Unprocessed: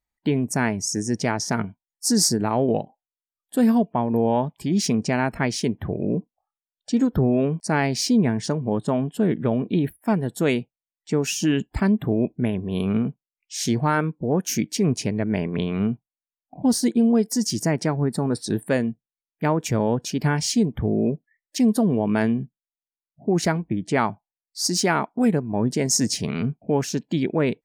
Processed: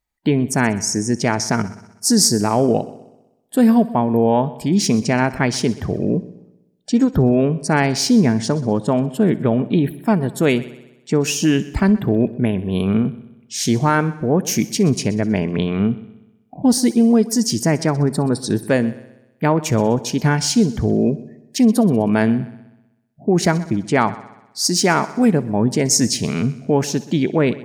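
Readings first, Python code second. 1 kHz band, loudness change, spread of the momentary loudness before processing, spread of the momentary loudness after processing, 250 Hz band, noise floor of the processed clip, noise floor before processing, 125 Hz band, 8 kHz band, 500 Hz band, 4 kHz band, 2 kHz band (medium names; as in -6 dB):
+5.0 dB, +5.0 dB, 7 LU, 7 LU, +5.0 dB, -56 dBFS, under -85 dBFS, +5.0 dB, +5.0 dB, +5.0 dB, +5.0 dB, +5.0 dB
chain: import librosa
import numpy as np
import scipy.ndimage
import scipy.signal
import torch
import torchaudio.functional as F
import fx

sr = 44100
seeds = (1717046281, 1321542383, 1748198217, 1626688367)

y = fx.echo_heads(x, sr, ms=63, heads='first and second', feedback_pct=50, wet_db=-21.0)
y = y * librosa.db_to_amplitude(5.0)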